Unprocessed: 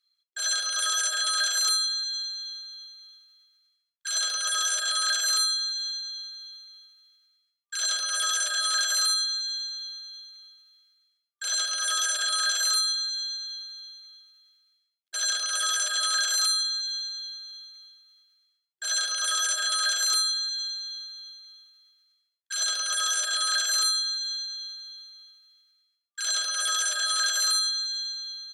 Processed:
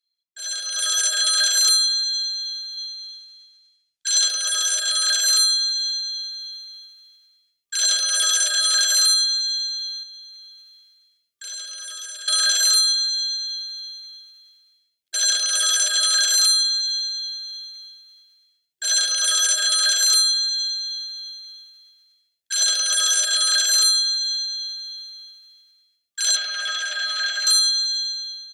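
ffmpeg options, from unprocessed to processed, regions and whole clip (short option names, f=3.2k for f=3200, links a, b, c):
-filter_complex "[0:a]asettb=1/sr,asplit=3[a][b][c];[a]atrim=end=2.774[d];[b]atrim=start=2.77:end=4.28,asetpts=PTS-STARTPTS,afade=t=in:d=0.004:c=qsin,afade=t=out:st=1.506:d=0.004:c=qsin,lowpass=7.1k,highshelf=f=4.3k:g=9[e];[c]atrim=start=4.276[f];[d][e]acrossfade=d=0.004:c1=hsin:c2=qsin[g];[g][f]acrossfade=d=0.004:c1=qsin:c2=hsin,asettb=1/sr,asplit=3[h][i][j];[h]atrim=end=10.034[k];[i]atrim=start=10.03:end=12.28,asetpts=PTS-STARTPTS,afade=t=in:d=0.004:c=qsin,afade=t=out:st=2.246:d=0.004:c=qsin,acompressor=threshold=-52dB:ratio=2:attack=3.2:release=140:knee=1:detection=peak,asuperstop=centerf=750:order=4:qfactor=4.2[l];[j]atrim=start=12.276[m];[k][l]acrossfade=d=0.004:c1=hsin:c2=qsin[n];[n][m]acrossfade=d=0.004:c1=qsin:c2=hsin,asettb=1/sr,asplit=3[o][p][q];[o]atrim=end=26.364[r];[p]atrim=start=26.36:end=27.47,asetpts=PTS-STARTPTS,afade=t=in:d=0.004:c=qsin,afade=t=out:st=1.106:d=0.004:c=qsin,aeval=exprs='val(0)+0.5*0.0168*sgn(val(0))':c=same,highpass=790,lowpass=2.7k,asplit=2[s][t];[t]adelay=13,volume=-14dB[u];[s][u]amix=inputs=2:normalize=0,atrim=end_sample=48951[v];[q]atrim=start=27.466[w];[r][v]acrossfade=d=0.004:c1=hsin:c2=qsin[x];[x][w]acrossfade=d=0.004:c1=qsin:c2=hsin,equalizer=f=1.1k:w=1.8:g=-13,dynaudnorm=f=310:g=5:m=15.5dB,volume=-5.5dB"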